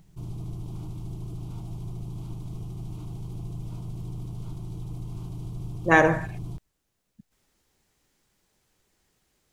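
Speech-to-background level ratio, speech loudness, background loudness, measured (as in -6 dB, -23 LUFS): 15.5 dB, -22.0 LUFS, -37.5 LUFS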